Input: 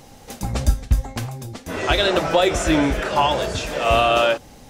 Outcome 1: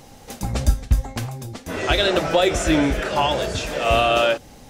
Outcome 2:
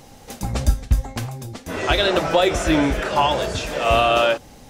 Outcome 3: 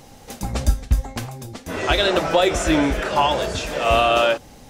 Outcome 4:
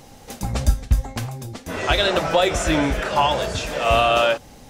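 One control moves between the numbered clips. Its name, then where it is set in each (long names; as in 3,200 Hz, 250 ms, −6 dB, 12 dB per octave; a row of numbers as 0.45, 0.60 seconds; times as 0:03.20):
dynamic equaliser, frequency: 1,000, 7,500, 120, 340 Hertz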